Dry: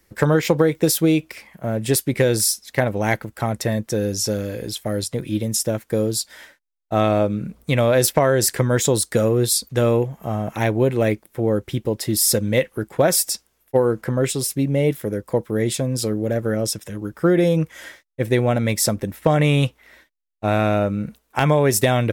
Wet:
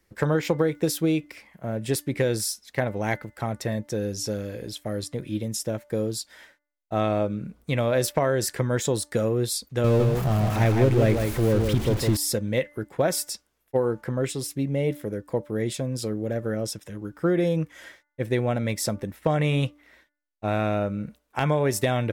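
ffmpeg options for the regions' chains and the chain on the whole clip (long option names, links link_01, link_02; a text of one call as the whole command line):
ffmpeg -i in.wav -filter_complex "[0:a]asettb=1/sr,asplit=3[link_01][link_02][link_03];[link_01]atrim=end=9.844[link_04];[link_02]atrim=start=9.84:end=12.17,asetpts=PTS-STARTPTS,afade=type=in:duration=0.004:curve=qsin,afade=type=out:start_time=2.326:duration=0.004:curve=qsin,aeval=exprs='val(0)+0.5*0.075*sgn(val(0))':channel_layout=same,lowshelf=frequency=110:gain=11.5,aecho=1:1:158:0.562,atrim=end_sample=102753[link_05];[link_03]atrim=start=12.166[link_06];[link_04][link_05]acrossfade=duration=0.004:curve1=hsin:curve2=qsin[link_07];[link_07][link_06]acrossfade=duration=0.004:curve1=qsin:curve2=hsin,highshelf=frequency=7900:gain=-6.5,bandreject=frequency=293.7:width_type=h:width=4,bandreject=frequency=587.4:width_type=h:width=4,bandreject=frequency=881.1:width_type=h:width=4,bandreject=frequency=1174.8:width_type=h:width=4,bandreject=frequency=1468.5:width_type=h:width=4,bandreject=frequency=1762.2:width_type=h:width=4,bandreject=frequency=2055.9:width_type=h:width=4,volume=-6dB" out.wav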